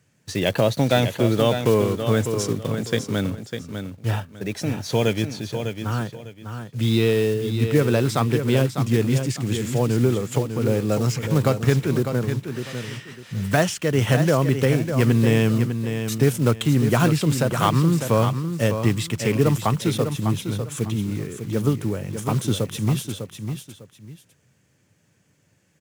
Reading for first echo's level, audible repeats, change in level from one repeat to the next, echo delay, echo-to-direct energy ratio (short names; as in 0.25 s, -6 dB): -8.0 dB, 2, -12.0 dB, 0.601 s, -7.5 dB